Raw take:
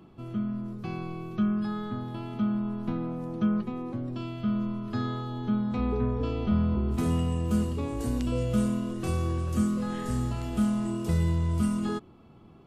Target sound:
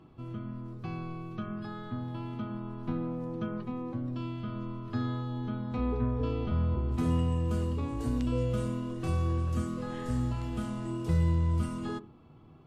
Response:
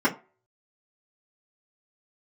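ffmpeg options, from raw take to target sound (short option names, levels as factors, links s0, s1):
-filter_complex "[0:a]highshelf=f=7600:g=-10,asplit=2[s0][s1];[1:a]atrim=start_sample=2205,asetrate=29106,aresample=44100[s2];[s1][s2]afir=irnorm=-1:irlink=0,volume=0.0422[s3];[s0][s3]amix=inputs=2:normalize=0,volume=0.75"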